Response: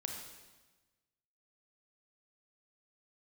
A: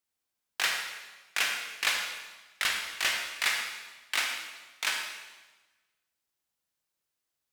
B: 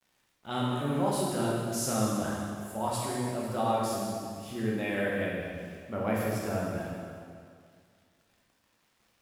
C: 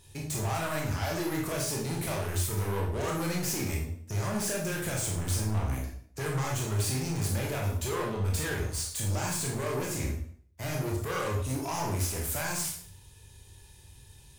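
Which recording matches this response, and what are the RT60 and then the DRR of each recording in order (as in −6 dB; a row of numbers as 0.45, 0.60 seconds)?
A; 1.2, 2.2, 0.55 seconds; 1.5, −5.0, −2.0 decibels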